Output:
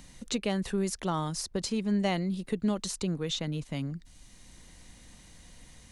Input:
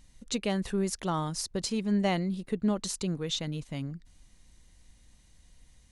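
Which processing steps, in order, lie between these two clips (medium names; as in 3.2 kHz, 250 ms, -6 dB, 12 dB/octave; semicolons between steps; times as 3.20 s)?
three bands compressed up and down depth 40%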